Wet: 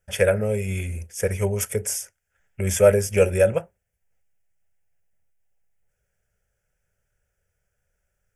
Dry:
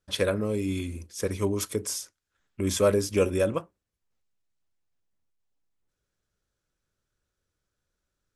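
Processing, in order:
phaser with its sweep stopped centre 1,100 Hz, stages 6
level +8.5 dB

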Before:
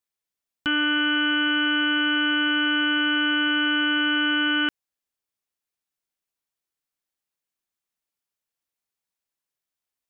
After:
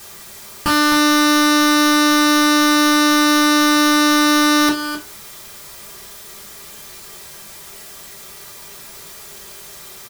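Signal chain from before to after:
each half-wave held at its own peak
low-shelf EQ 68 Hz +7.5 dB
background noise white −44 dBFS
in parallel at +1.5 dB: downward compressor, threshold −27 dBFS, peak gain reduction 10.5 dB
on the sum: low-shelf EQ 140 Hz +5 dB
notch filter 2,800 Hz, Q 15
single-tap delay 262 ms −9.5 dB
convolution reverb RT60 0.30 s, pre-delay 3 ms, DRR −3 dB
highs frequency-modulated by the lows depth 0.19 ms
level −4 dB

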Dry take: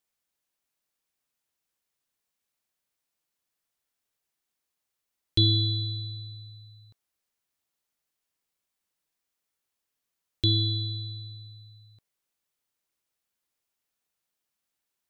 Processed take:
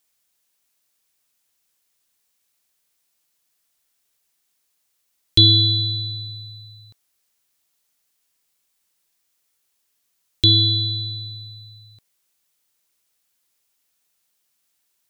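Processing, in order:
high-shelf EQ 2,600 Hz +8 dB
level +6 dB

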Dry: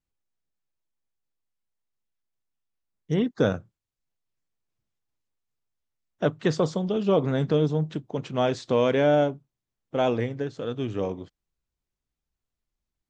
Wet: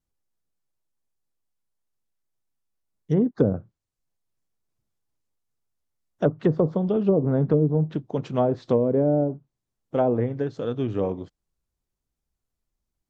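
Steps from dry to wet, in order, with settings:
treble cut that deepens with the level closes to 450 Hz, closed at −17.5 dBFS
parametric band 2,600 Hz −6 dB 1.9 octaves
level +3.5 dB

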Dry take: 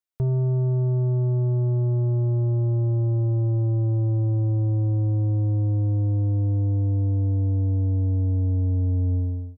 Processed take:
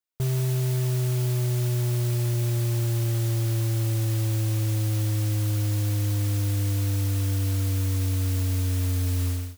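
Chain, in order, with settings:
brickwall limiter −23 dBFS, peak gain reduction 3 dB
noise that follows the level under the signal 14 dB

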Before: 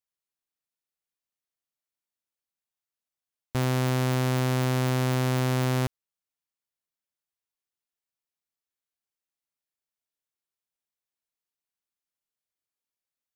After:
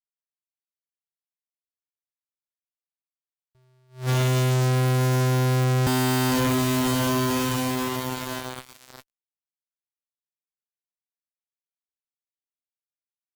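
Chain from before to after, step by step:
feedback delay with all-pass diffusion 579 ms, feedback 59%, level −12.5 dB
fuzz pedal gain 56 dB, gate −53 dBFS
level that may rise only so fast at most 190 dB per second
level −7 dB

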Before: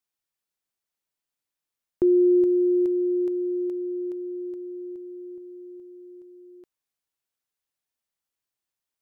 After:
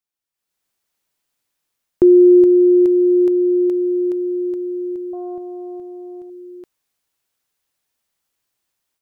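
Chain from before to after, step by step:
automatic gain control gain up to 14 dB
0:05.13–0:06.30: highs frequency-modulated by the lows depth 0.29 ms
level −2.5 dB

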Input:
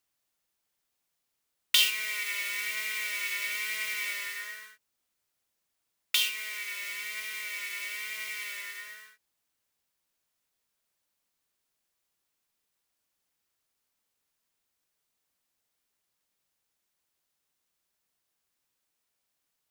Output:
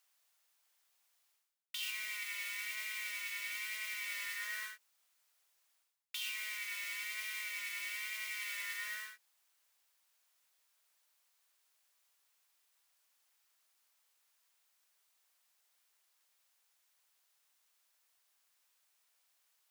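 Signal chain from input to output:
high-pass filter 720 Hz 12 dB per octave
reversed playback
downward compressor 20 to 1, threshold −43 dBFS, peak gain reduction 27 dB
reversed playback
level +5 dB

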